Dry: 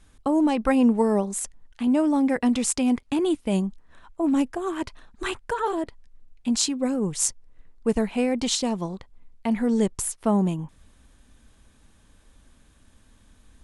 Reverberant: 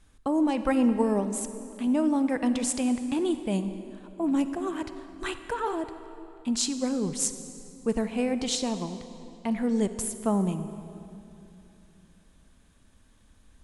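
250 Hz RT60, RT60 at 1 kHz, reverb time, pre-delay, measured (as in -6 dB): 3.4 s, 2.7 s, 2.8 s, 40 ms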